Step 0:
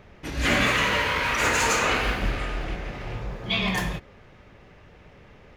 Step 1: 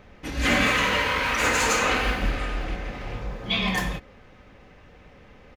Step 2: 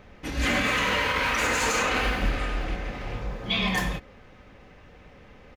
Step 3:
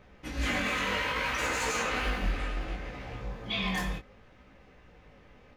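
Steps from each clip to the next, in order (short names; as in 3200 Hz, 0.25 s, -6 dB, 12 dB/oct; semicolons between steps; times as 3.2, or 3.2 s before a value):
comb 3.9 ms, depth 31%
limiter -15 dBFS, peak gain reduction 7 dB
chorus 0.65 Hz, delay 15 ms, depth 6 ms; gain -3 dB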